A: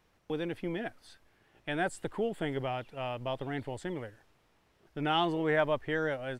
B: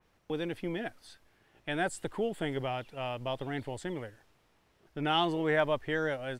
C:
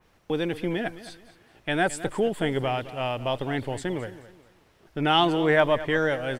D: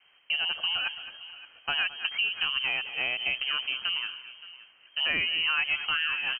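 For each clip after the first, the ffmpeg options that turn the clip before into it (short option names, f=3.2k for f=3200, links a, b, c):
-af "adynamicequalizer=threshold=0.00447:dfrequency=3000:dqfactor=0.7:tfrequency=3000:tqfactor=0.7:attack=5:release=100:ratio=0.375:range=2:mode=boostabove:tftype=highshelf"
-af "aecho=1:1:215|430|645:0.168|0.0554|0.0183,volume=7.5dB"
-filter_complex "[0:a]asplit=2[a][b];[b]adelay=571.4,volume=-18dB,highshelf=f=4k:g=-12.9[c];[a][c]amix=inputs=2:normalize=0,lowpass=f=2.7k:t=q:w=0.5098,lowpass=f=2.7k:t=q:w=0.6013,lowpass=f=2.7k:t=q:w=0.9,lowpass=f=2.7k:t=q:w=2.563,afreqshift=-3200,acompressor=threshold=-25dB:ratio=4"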